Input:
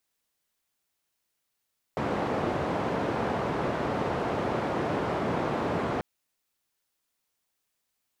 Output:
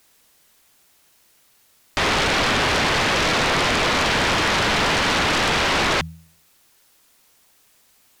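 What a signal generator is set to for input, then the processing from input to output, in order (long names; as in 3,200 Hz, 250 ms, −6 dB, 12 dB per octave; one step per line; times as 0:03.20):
band-limited noise 100–750 Hz, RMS −29 dBFS 4.04 s
hum removal 81.54 Hz, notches 2
sine wavefolder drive 18 dB, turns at −16.5 dBFS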